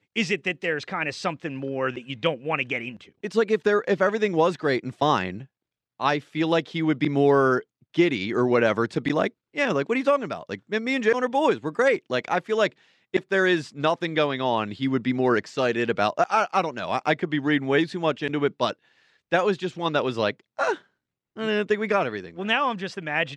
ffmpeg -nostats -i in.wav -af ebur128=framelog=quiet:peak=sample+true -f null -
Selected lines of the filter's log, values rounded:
Integrated loudness:
  I:         -24.4 LUFS
  Threshold: -34.6 LUFS
Loudness range:
  LRA:         3.7 LU
  Threshold: -44.5 LUFS
  LRA low:   -26.6 LUFS
  LRA high:  -22.8 LUFS
Sample peak:
  Peak:       -6.9 dBFS
True peak:
  Peak:       -6.9 dBFS